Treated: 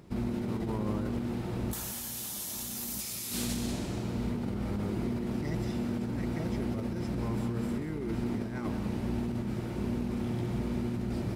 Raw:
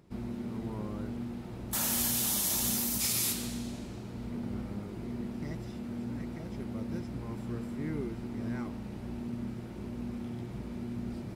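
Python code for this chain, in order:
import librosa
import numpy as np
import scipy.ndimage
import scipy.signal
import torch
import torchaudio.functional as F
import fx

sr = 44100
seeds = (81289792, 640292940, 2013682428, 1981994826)

y = fx.over_compress(x, sr, threshold_db=-38.0, ratio=-1.0)
y = y + 10.0 ** (-10.0 / 20.0) * np.pad(y, (int(187 * sr / 1000.0), 0))[:len(y)]
y = F.gain(torch.from_numpy(y), 5.0).numpy()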